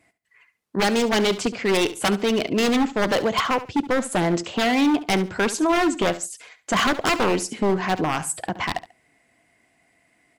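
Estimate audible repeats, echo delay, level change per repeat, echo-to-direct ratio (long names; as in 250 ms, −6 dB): 2, 70 ms, −13.0 dB, −15.0 dB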